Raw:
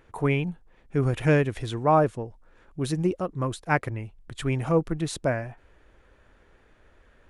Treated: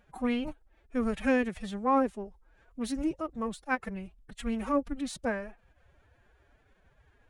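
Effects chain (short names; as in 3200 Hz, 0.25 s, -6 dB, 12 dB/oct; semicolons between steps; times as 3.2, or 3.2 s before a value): formant-preserving pitch shift +9.5 st; ending taper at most 590 dB/s; gain -5.5 dB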